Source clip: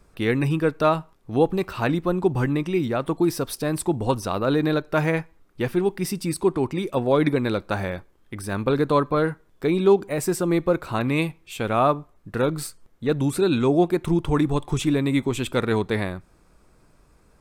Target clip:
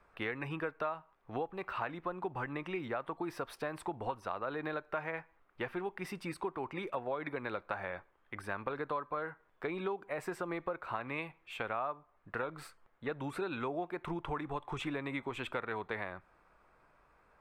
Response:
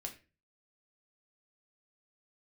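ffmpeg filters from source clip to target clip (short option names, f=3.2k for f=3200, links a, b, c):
-filter_complex "[0:a]acrossover=split=600 2600:gain=0.158 1 0.0794[a][b][c];[a][b][c]amix=inputs=3:normalize=0,acompressor=threshold=-34dB:ratio=6"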